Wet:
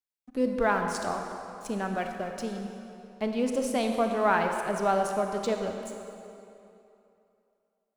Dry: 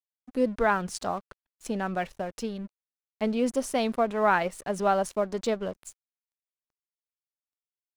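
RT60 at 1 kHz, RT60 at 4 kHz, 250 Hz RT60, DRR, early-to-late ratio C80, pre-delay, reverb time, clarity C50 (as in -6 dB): 2.9 s, 2.2 s, 2.6 s, 4.0 dB, 5.0 dB, 28 ms, 2.9 s, 4.5 dB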